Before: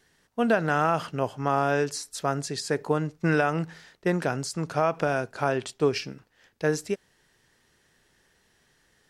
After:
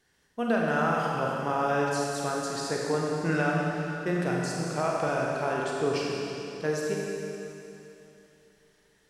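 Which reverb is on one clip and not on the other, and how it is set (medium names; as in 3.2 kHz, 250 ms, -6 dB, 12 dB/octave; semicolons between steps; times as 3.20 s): Schroeder reverb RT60 3 s, combs from 31 ms, DRR -3 dB; trim -6 dB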